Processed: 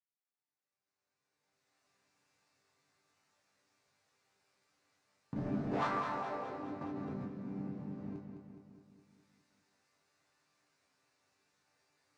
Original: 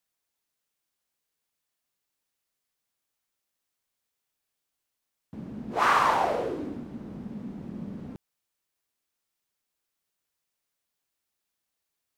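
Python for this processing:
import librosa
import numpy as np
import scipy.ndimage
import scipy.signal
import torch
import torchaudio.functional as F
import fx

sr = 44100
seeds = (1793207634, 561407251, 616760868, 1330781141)

y = fx.recorder_agc(x, sr, target_db=-17.5, rise_db_per_s=17.0, max_gain_db=30)
y = scipy.signal.sosfilt(scipy.signal.butter(2, 64.0, 'highpass', fs=sr, output='sos'), y)
y = fx.peak_eq(y, sr, hz=3200.0, db=-9.5, octaves=0.4)
y = fx.leveller(y, sr, passes=3, at=(5.36, 5.87))
y = fx.air_absorb(y, sr, metres=110.0)
y = fx.resonator_bank(y, sr, root=43, chord='sus4', decay_s=0.36)
y = fx.echo_feedback(y, sr, ms=209, feedback_pct=58, wet_db=-6.5)
y = fx.env_flatten(y, sr, amount_pct=100, at=(6.81, 7.28))
y = y * 10.0 ** (-3.5 / 20.0)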